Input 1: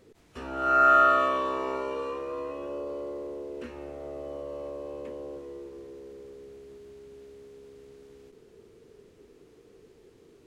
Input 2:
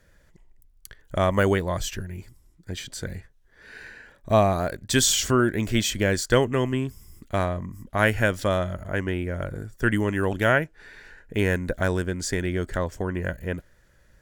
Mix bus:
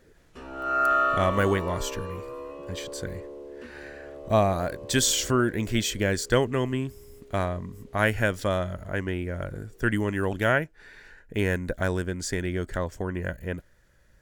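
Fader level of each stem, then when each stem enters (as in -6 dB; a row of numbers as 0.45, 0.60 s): -3.5, -2.5 dB; 0.00, 0.00 s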